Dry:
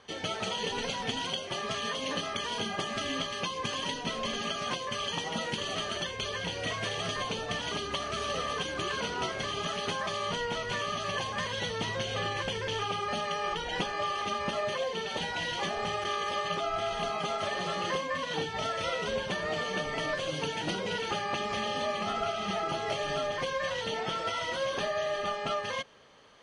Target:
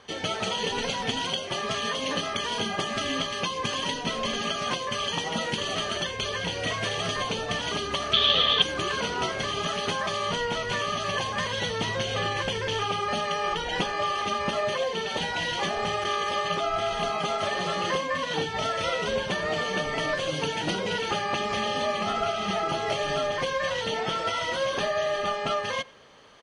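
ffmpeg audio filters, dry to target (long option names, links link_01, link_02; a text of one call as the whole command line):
ffmpeg -i in.wav -filter_complex "[0:a]asettb=1/sr,asplit=3[link_01][link_02][link_03];[link_01]atrim=end=8.134[link_04];[link_02]atrim=start=8.13:end=8.62,asetpts=PTS-STARTPTS,afade=type=in:duration=0.004:curve=qsin,afade=type=out:start_time=0.486:duration=0.004:curve=qsin,lowpass=frequency=3500:width_type=q:width=12[link_05];[link_03]atrim=start=8.616[link_06];[link_04][link_05]acrossfade=duration=0.004:curve1=hsin:curve2=qsin[link_07];[link_07][link_06]acrossfade=duration=0.004:curve1=qsin:curve2=hsin,asplit=2[link_08][link_09];[link_09]adelay=90,highpass=300,lowpass=3400,asoftclip=type=hard:threshold=-21.5dB,volume=-23dB[link_10];[link_08][link_10]amix=inputs=2:normalize=0,volume=4.5dB" out.wav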